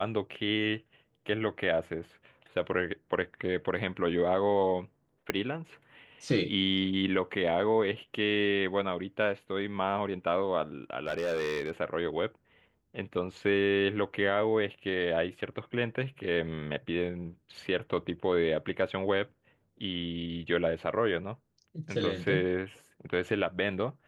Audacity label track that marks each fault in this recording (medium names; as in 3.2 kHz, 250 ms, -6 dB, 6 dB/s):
5.300000	5.300000	pop -14 dBFS
11.060000	11.710000	clipped -26.5 dBFS